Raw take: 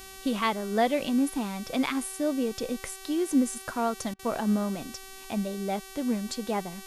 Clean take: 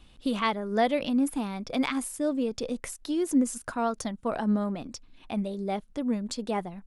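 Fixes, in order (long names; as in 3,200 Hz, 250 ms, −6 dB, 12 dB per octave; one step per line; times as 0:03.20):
hum removal 383.7 Hz, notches 35
repair the gap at 0:04.14, 50 ms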